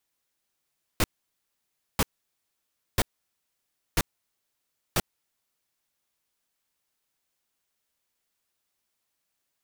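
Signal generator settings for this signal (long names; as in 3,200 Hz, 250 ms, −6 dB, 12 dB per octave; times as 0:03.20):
noise bursts pink, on 0.04 s, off 0.95 s, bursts 5, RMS −22 dBFS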